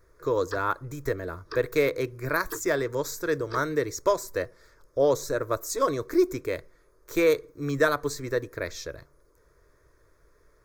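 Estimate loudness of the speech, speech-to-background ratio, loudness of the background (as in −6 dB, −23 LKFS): −28.0 LKFS, 14.5 dB, −42.5 LKFS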